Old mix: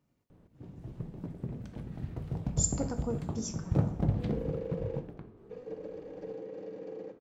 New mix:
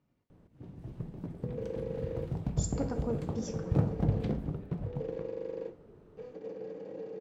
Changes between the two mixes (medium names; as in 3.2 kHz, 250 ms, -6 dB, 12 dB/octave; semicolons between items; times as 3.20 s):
speech: add low-pass 4.3 kHz 12 dB/octave; second sound: entry -2.75 s